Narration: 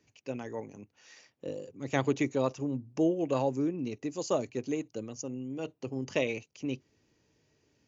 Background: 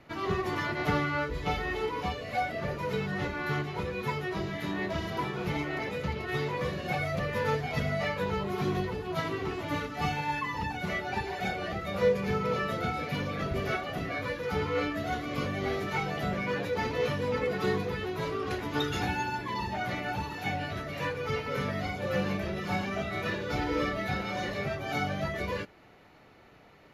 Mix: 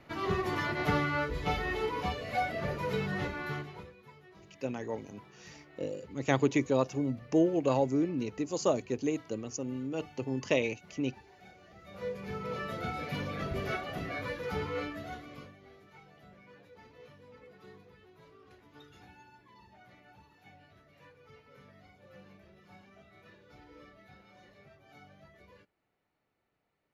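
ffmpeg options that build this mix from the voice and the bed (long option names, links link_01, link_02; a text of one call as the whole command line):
ffmpeg -i stem1.wav -i stem2.wav -filter_complex "[0:a]adelay=4350,volume=1.5dB[link_01];[1:a]volume=18.5dB,afade=type=out:start_time=3.12:duration=0.84:silence=0.0794328,afade=type=in:start_time=11.7:duration=1.4:silence=0.105925,afade=type=out:start_time=14.47:duration=1.11:silence=0.0841395[link_02];[link_01][link_02]amix=inputs=2:normalize=0" out.wav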